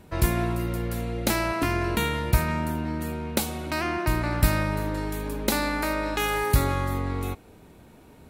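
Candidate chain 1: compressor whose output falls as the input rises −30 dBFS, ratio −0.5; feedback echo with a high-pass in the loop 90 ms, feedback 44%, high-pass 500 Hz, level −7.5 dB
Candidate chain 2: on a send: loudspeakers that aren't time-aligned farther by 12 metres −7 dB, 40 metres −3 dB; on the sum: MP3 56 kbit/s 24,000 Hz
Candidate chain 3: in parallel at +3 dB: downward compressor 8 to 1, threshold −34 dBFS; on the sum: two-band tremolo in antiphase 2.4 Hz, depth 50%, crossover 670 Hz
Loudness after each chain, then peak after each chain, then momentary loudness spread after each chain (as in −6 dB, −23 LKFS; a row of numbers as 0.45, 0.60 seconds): −30.5, −25.0, −26.5 LKFS; −15.0, −7.5, −6.5 dBFS; 7, 6, 5 LU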